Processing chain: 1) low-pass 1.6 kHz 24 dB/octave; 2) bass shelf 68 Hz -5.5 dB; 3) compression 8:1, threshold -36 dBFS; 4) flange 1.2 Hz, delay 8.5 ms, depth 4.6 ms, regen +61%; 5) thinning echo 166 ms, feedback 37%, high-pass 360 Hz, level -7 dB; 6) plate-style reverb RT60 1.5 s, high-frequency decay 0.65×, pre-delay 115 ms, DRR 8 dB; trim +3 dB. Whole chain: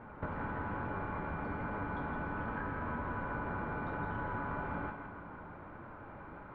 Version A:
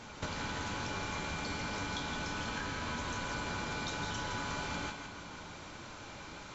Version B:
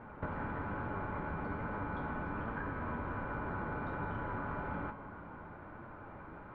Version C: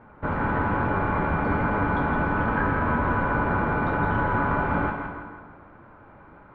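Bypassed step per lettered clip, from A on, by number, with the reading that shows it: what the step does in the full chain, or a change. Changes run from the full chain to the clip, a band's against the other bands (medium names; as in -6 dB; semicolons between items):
1, 2 kHz band +3.5 dB; 5, echo-to-direct -4.0 dB to -8.0 dB; 3, mean gain reduction 10.5 dB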